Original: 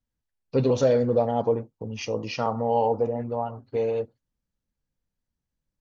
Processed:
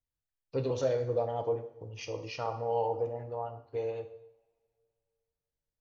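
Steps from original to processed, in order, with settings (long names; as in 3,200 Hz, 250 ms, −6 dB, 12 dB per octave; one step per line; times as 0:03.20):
parametric band 220 Hz −14.5 dB 0.39 octaves
coupled-rooms reverb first 0.74 s, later 2.8 s, from −26 dB, DRR 8 dB
level −8.5 dB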